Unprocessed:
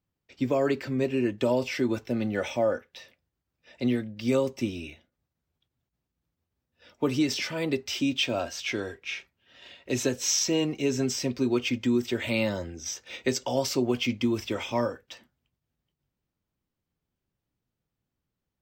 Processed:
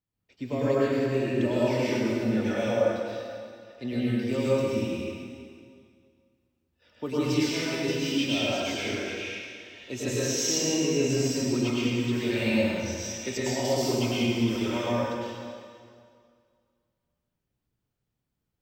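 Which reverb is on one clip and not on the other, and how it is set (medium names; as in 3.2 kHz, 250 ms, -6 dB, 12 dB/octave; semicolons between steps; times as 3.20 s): plate-style reverb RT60 2.1 s, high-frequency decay 0.9×, pre-delay 90 ms, DRR -8.5 dB; trim -8 dB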